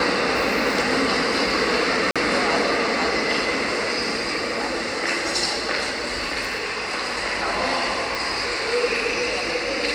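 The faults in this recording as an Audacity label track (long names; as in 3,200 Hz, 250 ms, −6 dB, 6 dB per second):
2.110000	2.160000	drop-out 46 ms
8.150000	8.150000	click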